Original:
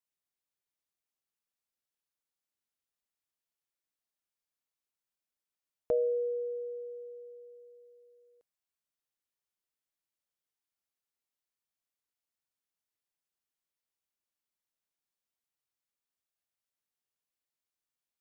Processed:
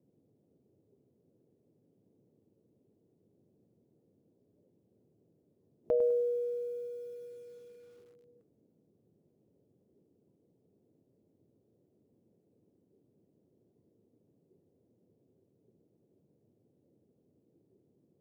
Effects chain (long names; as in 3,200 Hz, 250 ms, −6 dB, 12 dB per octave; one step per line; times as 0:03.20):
noise in a band 94–460 Hz −63 dBFS
noise reduction from a noise print of the clip's start 8 dB
feedback echo at a low word length 102 ms, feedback 35%, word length 10 bits, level −10 dB